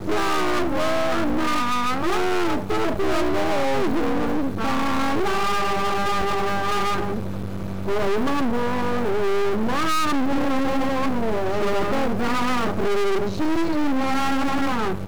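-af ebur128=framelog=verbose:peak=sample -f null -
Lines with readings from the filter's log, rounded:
Integrated loudness:
  I:         -23.2 LUFS
  Threshold: -33.2 LUFS
Loudness range:
  LRA:         1.4 LU
  Threshold: -43.2 LUFS
  LRA low:   -24.2 LUFS
  LRA high:  -22.8 LUFS
Sample peak:
  Peak:      -15.0 dBFS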